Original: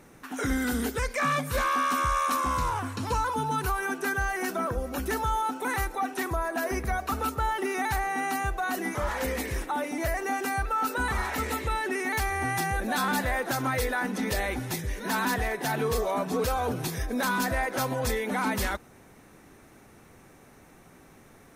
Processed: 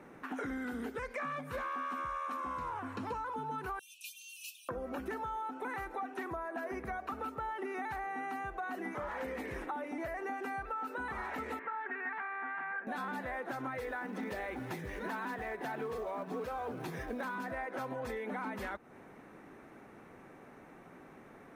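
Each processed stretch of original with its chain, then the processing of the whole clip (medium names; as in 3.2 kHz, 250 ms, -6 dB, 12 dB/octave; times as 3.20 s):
3.79–4.69 s: brick-wall FIR high-pass 2.4 kHz + treble shelf 3.7 kHz +7.5 dB
11.59–12.87 s: self-modulated delay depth 0.16 ms + cabinet simulation 470–2100 Hz, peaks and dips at 480 Hz -9 dB, 670 Hz -5 dB, 1.6 kHz +8 dB + comb 4.3 ms, depth 63%
13.79–17.35 s: hum notches 50/100/150/200/250 Hz + short-mantissa float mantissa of 2-bit
whole clip: three-band isolator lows -12 dB, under 160 Hz, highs -16 dB, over 2.6 kHz; compression, threshold -38 dBFS; trim +1 dB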